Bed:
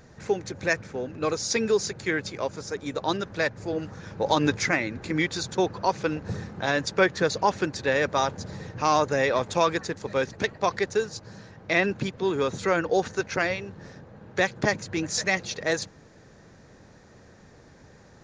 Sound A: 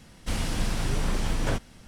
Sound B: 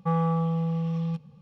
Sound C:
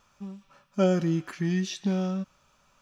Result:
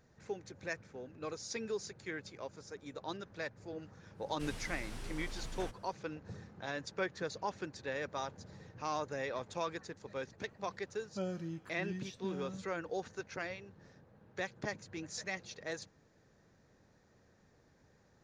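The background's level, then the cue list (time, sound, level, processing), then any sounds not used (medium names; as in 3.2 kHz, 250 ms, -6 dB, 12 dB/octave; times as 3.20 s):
bed -15.5 dB
4.13 s: add A -15.5 dB, fades 0.10 s + peaking EQ 120 Hz -7.5 dB 2.5 oct
10.38 s: add C -16 dB
not used: B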